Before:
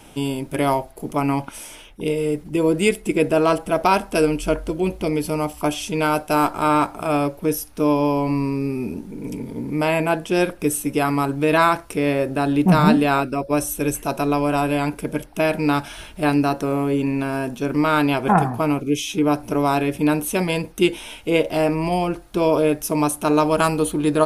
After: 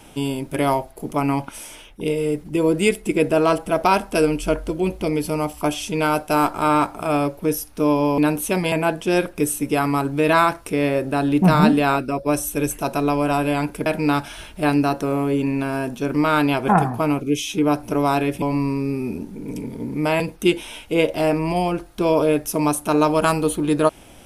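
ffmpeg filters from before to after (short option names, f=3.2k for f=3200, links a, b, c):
-filter_complex "[0:a]asplit=6[a][b][c][d][e][f];[a]atrim=end=8.182[g];[b]atrim=start=20.018:end=20.562[h];[c]atrim=start=9.958:end=15.102[i];[d]atrim=start=15.458:end=20.022[j];[e]atrim=start=8.178:end=9.962[k];[f]atrim=start=20.558[l];[g][h]acrossfade=d=0.004:c1=hsin:c2=hsin[m];[m][i]acrossfade=d=0.004:c1=hsin:c2=hsin[n];[n][j]acrossfade=d=0.004:c1=hsin:c2=hsin[o];[o][k]acrossfade=d=0.004:c1=hsin:c2=hsin[p];[p][l]acrossfade=d=0.004:c1=hsin:c2=hsin"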